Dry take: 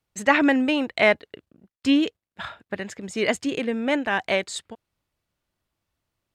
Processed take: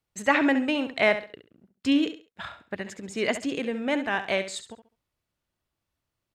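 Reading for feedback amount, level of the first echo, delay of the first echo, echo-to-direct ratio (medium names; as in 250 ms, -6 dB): 27%, -11.0 dB, 68 ms, -10.5 dB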